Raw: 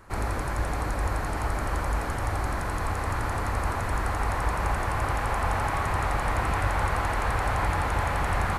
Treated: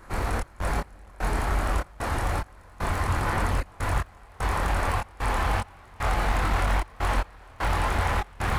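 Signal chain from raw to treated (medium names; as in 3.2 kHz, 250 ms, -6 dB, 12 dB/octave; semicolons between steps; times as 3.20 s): two-band feedback delay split 860 Hz, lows 85 ms, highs 206 ms, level -13 dB; hard clipper -26 dBFS, distortion -10 dB; trance gate "xx.x..xxx.xx..xx" 75 bpm -24 dB; chorus voices 4, 1.1 Hz, delay 24 ms, depth 3 ms; trim +6.5 dB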